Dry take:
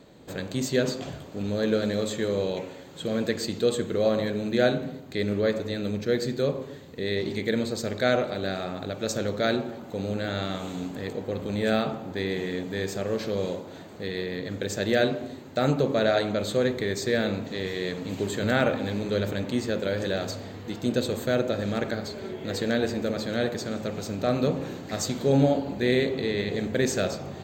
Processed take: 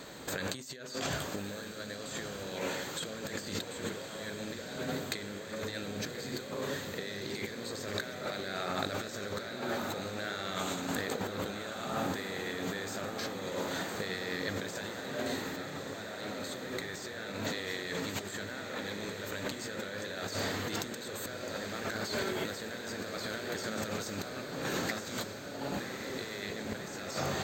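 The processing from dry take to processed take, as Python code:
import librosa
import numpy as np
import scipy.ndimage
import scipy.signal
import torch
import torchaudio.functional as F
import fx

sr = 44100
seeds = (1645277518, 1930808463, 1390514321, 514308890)

y = fx.bass_treble(x, sr, bass_db=-2, treble_db=13)
y = fx.over_compress(y, sr, threshold_db=-37.0, ratio=-1.0)
y = fx.peak_eq(y, sr, hz=1500.0, db=10.5, octaves=1.6)
y = fx.echo_diffused(y, sr, ms=1207, feedback_pct=71, wet_db=-7.5)
y = y * librosa.db_to_amplitude(-6.0)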